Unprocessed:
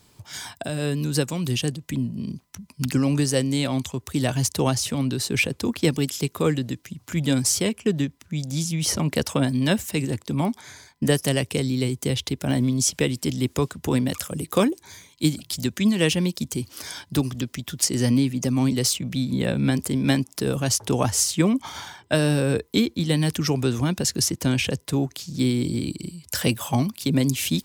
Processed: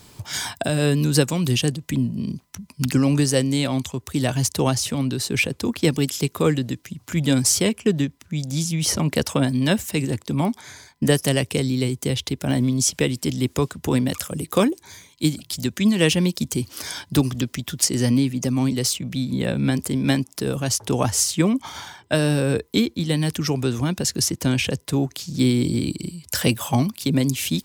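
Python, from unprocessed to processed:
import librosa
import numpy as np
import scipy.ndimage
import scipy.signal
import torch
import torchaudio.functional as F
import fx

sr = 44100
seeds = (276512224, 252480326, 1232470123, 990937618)

y = fx.rider(x, sr, range_db=10, speed_s=2.0)
y = y * 10.0 ** (1.0 / 20.0)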